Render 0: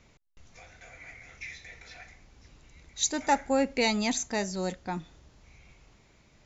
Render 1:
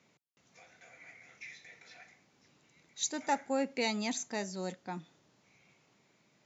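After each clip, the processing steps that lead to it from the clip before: HPF 140 Hz 24 dB/oct; gain -6.5 dB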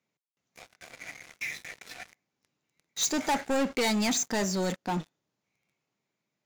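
sample leveller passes 5; gain -5 dB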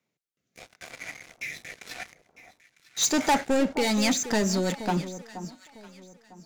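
rotary speaker horn 0.85 Hz, later 6 Hz, at 3.68; echo with dull and thin repeats by turns 0.476 s, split 1100 Hz, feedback 50%, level -11.5 dB; gain +5.5 dB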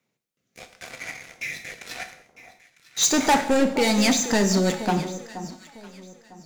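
non-linear reverb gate 0.24 s falling, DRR 7 dB; gain +3.5 dB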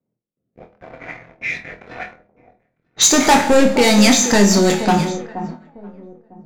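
sample leveller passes 1; flutter echo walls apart 4.2 m, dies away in 0.22 s; low-pass opened by the level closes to 510 Hz, open at -17 dBFS; gain +4 dB

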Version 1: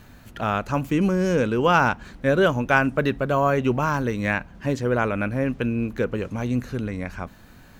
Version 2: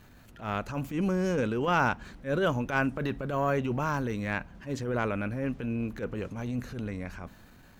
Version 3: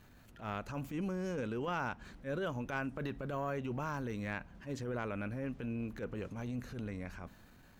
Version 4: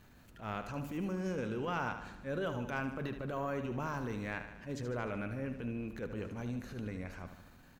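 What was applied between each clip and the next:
transient shaper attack -12 dB, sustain +2 dB; gain -6 dB
compressor 2.5:1, threshold -30 dBFS, peak gain reduction 7 dB; gain -5.5 dB
feedback echo 75 ms, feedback 58%, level -9.5 dB

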